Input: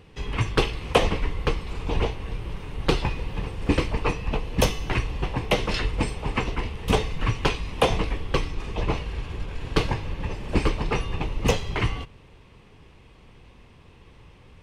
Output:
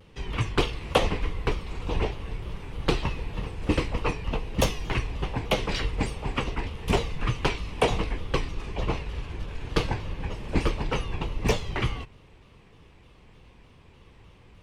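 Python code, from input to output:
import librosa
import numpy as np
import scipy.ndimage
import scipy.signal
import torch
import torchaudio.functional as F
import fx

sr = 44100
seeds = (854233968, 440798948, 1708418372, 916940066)

y = fx.vibrato_shape(x, sr, shape='saw_down', rate_hz=3.3, depth_cents=160.0)
y = F.gain(torch.from_numpy(y), -2.5).numpy()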